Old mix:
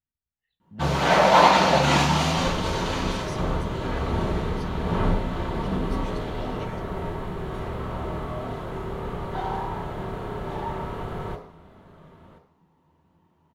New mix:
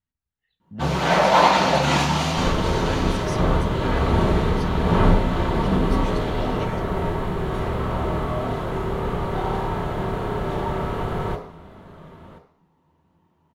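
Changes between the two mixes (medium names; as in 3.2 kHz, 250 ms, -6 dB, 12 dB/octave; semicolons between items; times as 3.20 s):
speech +6.0 dB; second sound +6.5 dB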